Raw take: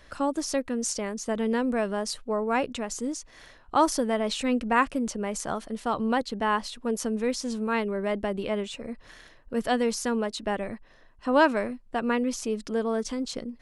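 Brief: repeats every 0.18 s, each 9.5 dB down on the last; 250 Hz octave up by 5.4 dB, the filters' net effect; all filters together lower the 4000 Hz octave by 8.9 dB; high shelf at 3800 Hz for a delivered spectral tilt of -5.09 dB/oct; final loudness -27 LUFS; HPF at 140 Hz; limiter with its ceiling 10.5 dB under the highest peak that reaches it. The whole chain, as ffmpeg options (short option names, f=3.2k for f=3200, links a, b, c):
-af "highpass=140,equalizer=f=250:t=o:g=6.5,highshelf=f=3.8k:g=-5,equalizer=f=4k:t=o:g=-9,alimiter=limit=-19.5dB:level=0:latency=1,aecho=1:1:180|360|540|720:0.335|0.111|0.0365|0.012,volume=1.5dB"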